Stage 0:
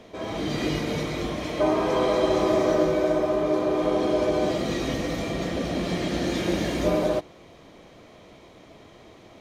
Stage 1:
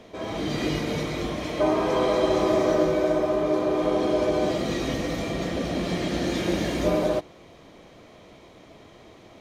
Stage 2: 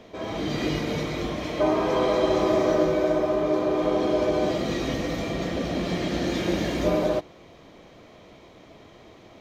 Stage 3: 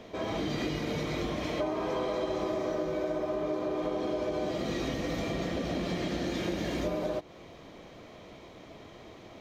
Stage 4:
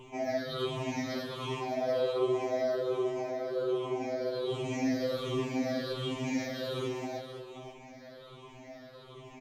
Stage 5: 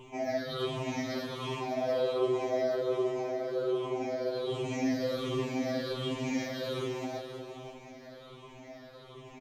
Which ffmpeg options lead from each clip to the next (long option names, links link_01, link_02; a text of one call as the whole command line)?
ffmpeg -i in.wav -af anull out.wav
ffmpeg -i in.wav -af "equalizer=frequency=9500:width=1.8:gain=-7" out.wav
ffmpeg -i in.wav -af "acompressor=threshold=-29dB:ratio=6" out.wav
ffmpeg -i in.wav -filter_complex "[0:a]afftfilt=real='re*pow(10,21/40*sin(2*PI*(0.67*log(max(b,1)*sr/1024/100)/log(2)-(-1.3)*(pts-256)/sr)))':imag='im*pow(10,21/40*sin(2*PI*(0.67*log(max(b,1)*sr/1024/100)/log(2)-(-1.3)*(pts-256)/sr)))':win_size=1024:overlap=0.75,asplit=2[link_01][link_02];[link_02]aecho=0:1:200|522:0.15|0.335[link_03];[link_01][link_03]amix=inputs=2:normalize=0,afftfilt=real='re*2.45*eq(mod(b,6),0)':imag='im*2.45*eq(mod(b,6),0)':win_size=2048:overlap=0.75,volume=-3.5dB" out.wav
ffmpeg -i in.wav -af "aecho=1:1:351|702|1053|1404|1755:0.2|0.102|0.0519|0.0265|0.0135" out.wav